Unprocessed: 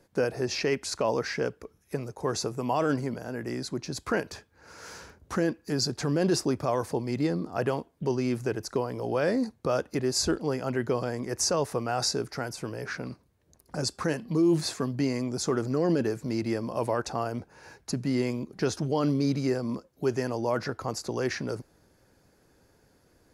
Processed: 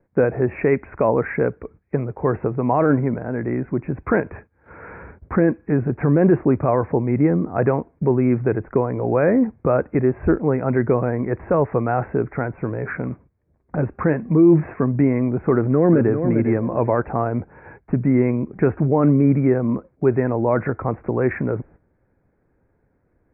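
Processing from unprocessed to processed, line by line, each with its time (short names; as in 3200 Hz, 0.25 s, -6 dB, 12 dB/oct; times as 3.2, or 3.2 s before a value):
15.52–16.23 echo throw 0.4 s, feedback 20%, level -7.5 dB
whole clip: steep low-pass 2400 Hz 96 dB/oct; tilt -1.5 dB/oct; gate -51 dBFS, range -12 dB; gain +7.5 dB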